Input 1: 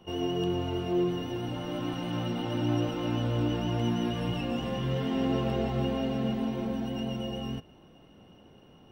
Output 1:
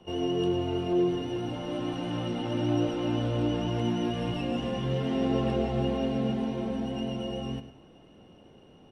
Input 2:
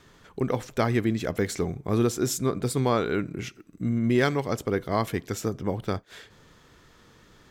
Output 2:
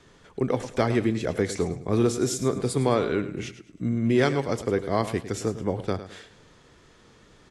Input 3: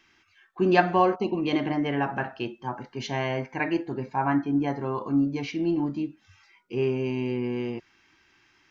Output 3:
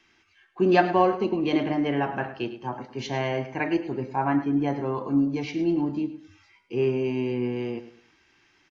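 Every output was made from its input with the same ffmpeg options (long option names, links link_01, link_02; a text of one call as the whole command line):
ffmpeg -i in.wav -filter_complex "[0:a]equalizer=frequency=1300:width=0.64:gain=-7,aecho=1:1:105|210|315:0.224|0.0672|0.0201,acrossover=split=370|2700[link_01][link_02][link_03];[link_02]acontrast=43[link_04];[link_01][link_04][link_03]amix=inputs=3:normalize=0" -ar 24000 -c:a aac -b:a 48k out.aac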